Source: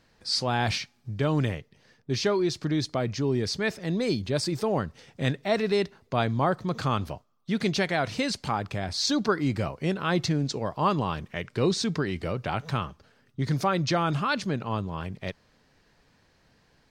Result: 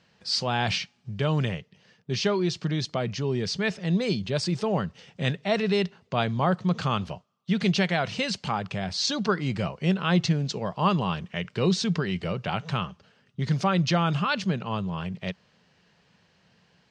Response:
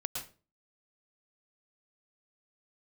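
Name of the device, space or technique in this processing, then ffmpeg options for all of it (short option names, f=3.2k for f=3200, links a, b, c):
car door speaker: -af "highpass=92,equalizer=f=180:t=q:w=4:g=8,equalizer=f=290:t=q:w=4:g=-8,equalizer=f=2.9k:t=q:w=4:g=7,lowpass=f=7.7k:w=0.5412,lowpass=f=7.7k:w=1.3066"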